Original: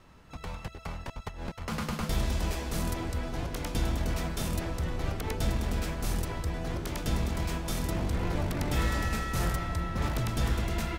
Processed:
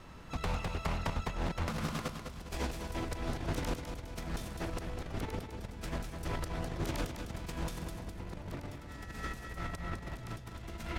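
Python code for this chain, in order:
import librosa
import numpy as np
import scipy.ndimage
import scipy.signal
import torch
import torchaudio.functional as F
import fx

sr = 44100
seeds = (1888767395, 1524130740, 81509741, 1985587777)

y = fx.over_compress(x, sr, threshold_db=-36.0, ratio=-0.5)
y = fx.echo_feedback(y, sr, ms=204, feedback_pct=40, wet_db=-7)
y = fx.doppler_dist(y, sr, depth_ms=0.31)
y = y * librosa.db_to_amplitude(-1.5)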